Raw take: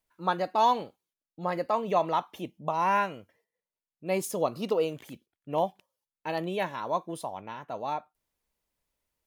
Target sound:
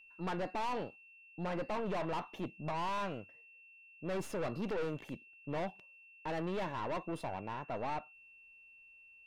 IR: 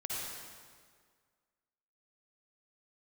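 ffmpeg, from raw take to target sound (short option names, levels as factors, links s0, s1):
-af "aeval=exprs='(tanh(70.8*val(0)+0.55)-tanh(0.55))/70.8':c=same,aemphasis=mode=reproduction:type=75kf,aeval=exprs='val(0)+0.001*sin(2*PI*2700*n/s)':c=same,volume=1.41"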